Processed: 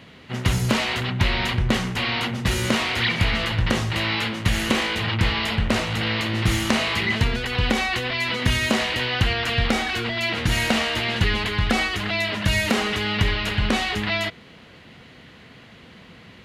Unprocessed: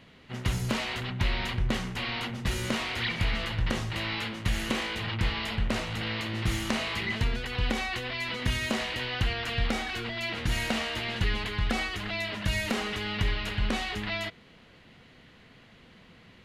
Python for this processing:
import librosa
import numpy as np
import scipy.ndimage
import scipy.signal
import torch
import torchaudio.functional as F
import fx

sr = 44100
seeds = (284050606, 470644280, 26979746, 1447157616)

y = scipy.signal.sosfilt(scipy.signal.butter(2, 53.0, 'highpass', fs=sr, output='sos'), x)
y = y * 10.0 ** (8.5 / 20.0)